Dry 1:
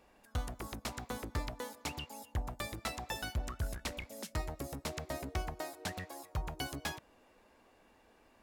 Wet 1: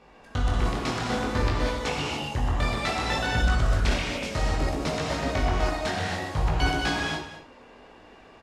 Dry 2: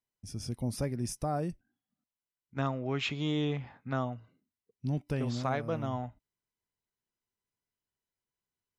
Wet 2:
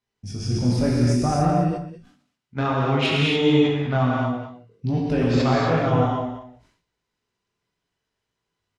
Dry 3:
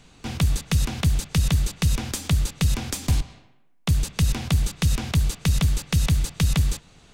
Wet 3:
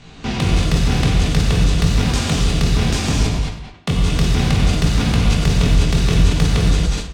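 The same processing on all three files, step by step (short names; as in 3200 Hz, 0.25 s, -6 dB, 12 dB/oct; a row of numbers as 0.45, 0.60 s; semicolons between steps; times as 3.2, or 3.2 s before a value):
LPF 5300 Hz 12 dB/oct; chorus 0.6 Hz, delay 17.5 ms, depth 7.4 ms; in parallel at +1 dB: compressor, threshold -30 dBFS; on the sum: added harmonics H 5 -11 dB, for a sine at -10 dBFS; on a send: echo 0.206 s -13.5 dB; on the sum: non-linear reverb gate 0.31 s flat, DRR -4 dB; sustainer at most 98 dB/s; gain -2 dB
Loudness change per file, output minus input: +14.0, +13.0, +6.5 LU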